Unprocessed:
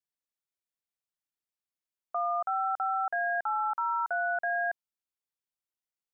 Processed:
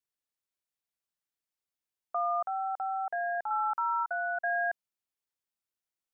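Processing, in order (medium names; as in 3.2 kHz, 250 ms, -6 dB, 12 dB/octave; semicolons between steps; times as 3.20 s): 2.47–3.51 s: peaking EQ 1.4 kHz -9.5 dB 0.52 oct; 4.03–4.44 s: level held to a coarse grid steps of 16 dB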